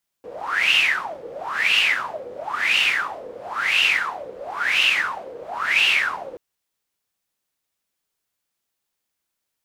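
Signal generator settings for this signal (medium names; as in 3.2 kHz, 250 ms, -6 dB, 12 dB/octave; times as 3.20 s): wind-like swept noise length 6.13 s, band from 480 Hz, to 2.8 kHz, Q 11, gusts 6, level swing 19 dB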